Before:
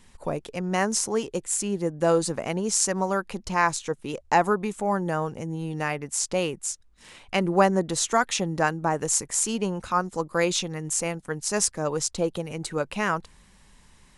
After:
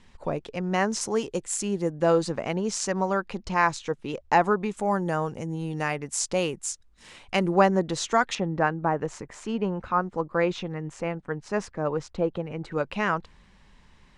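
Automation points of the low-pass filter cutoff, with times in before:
4,800 Hz
from 0:01.01 7,900 Hz
from 0:01.91 4,800 Hz
from 0:04.77 9,200 Hz
from 0:07.55 5,000 Hz
from 0:08.35 2,100 Hz
from 0:12.72 4,100 Hz

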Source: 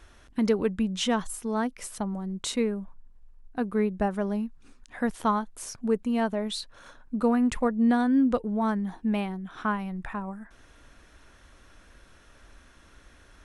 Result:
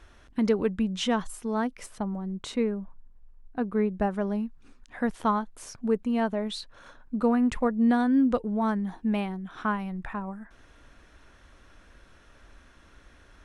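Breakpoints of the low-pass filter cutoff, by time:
low-pass filter 6 dB per octave
5,200 Hz
from 0:01.86 2,200 Hz
from 0:03.89 4,500 Hz
from 0:07.70 8,700 Hz
from 0:09.95 5,100 Hz

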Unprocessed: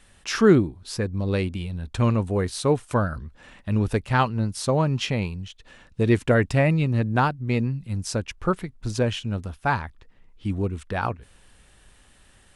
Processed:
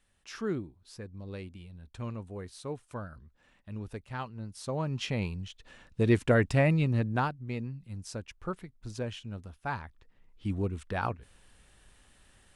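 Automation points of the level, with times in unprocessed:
0:04.33 −17 dB
0:05.31 −4.5 dB
0:06.91 −4.5 dB
0:07.56 −12.5 dB
0:09.58 −12.5 dB
0:10.47 −5.5 dB

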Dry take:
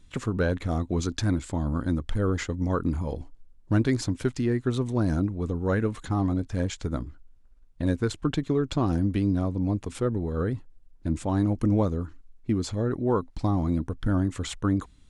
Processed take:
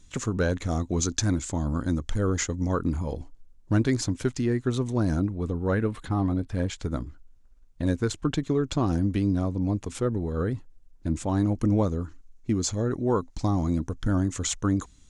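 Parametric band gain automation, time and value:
parametric band 6,500 Hz 0.63 octaves
0:02.47 +12.5 dB
0:02.87 +5.5 dB
0:05.04 +5.5 dB
0:05.81 −6 dB
0:06.57 −6 dB
0:07.00 +6 dB
0:11.85 +6 dB
0:12.52 +13.5 dB

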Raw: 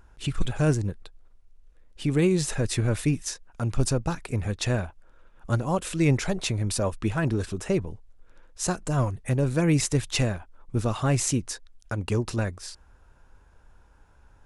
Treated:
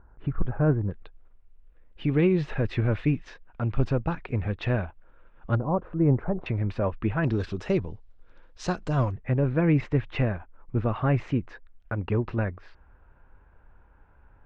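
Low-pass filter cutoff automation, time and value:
low-pass filter 24 dB per octave
1,500 Hz
from 0:00.91 2,900 Hz
from 0:05.55 1,200 Hz
from 0:06.46 2,500 Hz
from 0:07.24 4,500 Hz
from 0:09.12 2,400 Hz

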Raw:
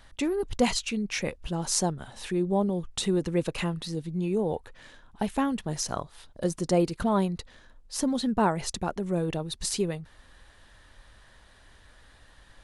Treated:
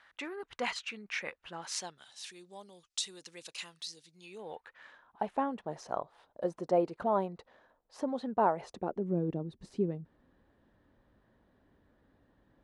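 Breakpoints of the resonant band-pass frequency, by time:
resonant band-pass, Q 1.3
0:01.57 1,600 Hz
0:02.16 5,500 Hz
0:04.21 5,500 Hz
0:04.49 2,100 Hz
0:05.34 700 Hz
0:08.62 700 Hz
0:09.13 260 Hz

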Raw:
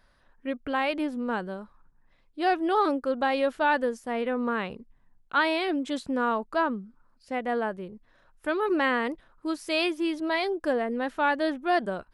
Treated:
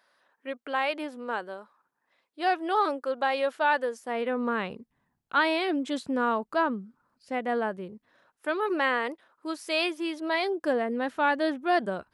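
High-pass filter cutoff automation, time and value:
0:03.87 440 Hz
0:04.70 110 Hz
0:07.90 110 Hz
0:08.56 370 Hz
0:10.19 370 Hz
0:10.84 93 Hz

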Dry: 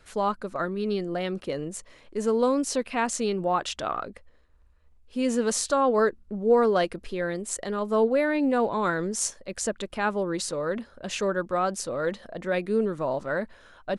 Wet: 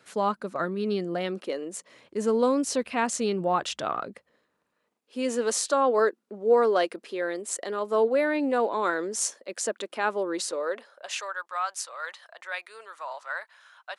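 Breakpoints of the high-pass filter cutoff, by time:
high-pass filter 24 dB per octave
0:01.11 140 Hz
0:01.61 310 Hz
0:02.20 75 Hz
0:03.49 75 Hz
0:05.24 280 Hz
0:10.42 280 Hz
0:11.35 890 Hz

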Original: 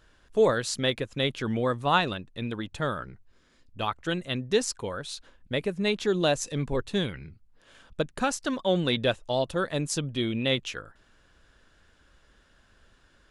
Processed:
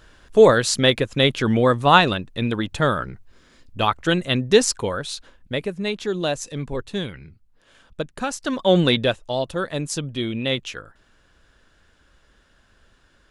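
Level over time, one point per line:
0:04.77 +9.5 dB
0:05.91 +0.5 dB
0:08.29 +0.5 dB
0:08.80 +10 dB
0:09.19 +2.5 dB

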